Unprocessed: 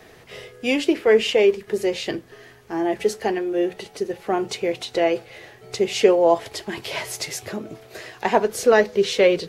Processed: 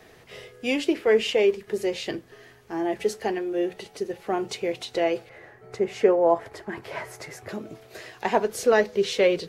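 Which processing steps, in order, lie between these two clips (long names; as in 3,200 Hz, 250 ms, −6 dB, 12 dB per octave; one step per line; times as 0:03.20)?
0:05.29–0:07.49: high shelf with overshoot 2,300 Hz −10 dB, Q 1.5
level −4 dB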